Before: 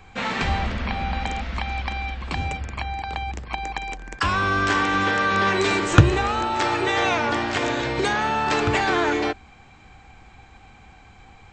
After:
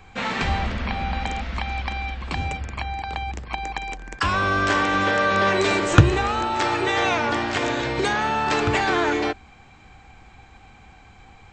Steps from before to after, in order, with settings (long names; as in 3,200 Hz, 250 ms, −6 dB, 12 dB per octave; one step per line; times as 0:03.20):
0:04.33–0:05.95: parametric band 590 Hz +9.5 dB 0.24 octaves